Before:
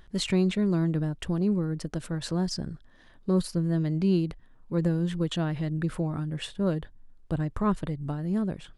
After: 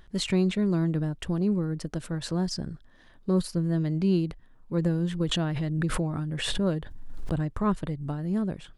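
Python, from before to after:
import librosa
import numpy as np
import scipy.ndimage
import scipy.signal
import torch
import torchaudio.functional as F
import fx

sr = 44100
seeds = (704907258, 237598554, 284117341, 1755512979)

y = fx.pre_swell(x, sr, db_per_s=32.0, at=(5.2, 7.48))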